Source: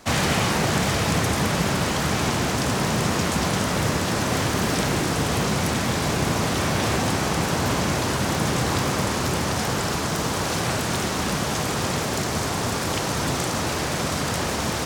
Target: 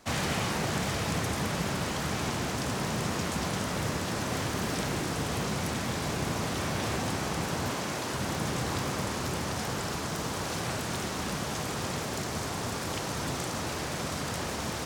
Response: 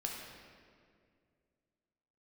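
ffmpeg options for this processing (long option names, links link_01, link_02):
-filter_complex "[0:a]asettb=1/sr,asplit=3[link_01][link_02][link_03];[link_01]atrim=end=7.704[link_04];[link_02]atrim=start=7.7:end=8.14,asetpts=PTS-STARTPTS,afade=type=in:duration=0.004:curve=qsin,afade=type=out:start_time=0.436:duration=0.004:curve=qsin,highpass=frequency=220:poles=1[link_05];[link_03]atrim=start=8.136[link_06];[link_04][link_05]acrossfade=duration=0.004:curve1=hsin:curve2=qsin[link_07];[link_07][link_06]acrossfade=duration=0.004:curve1=qsin:curve2=hsin,volume=-8.5dB"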